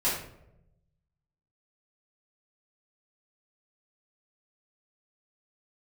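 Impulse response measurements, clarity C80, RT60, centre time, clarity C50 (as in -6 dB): 7.0 dB, no single decay rate, 45 ms, 3.5 dB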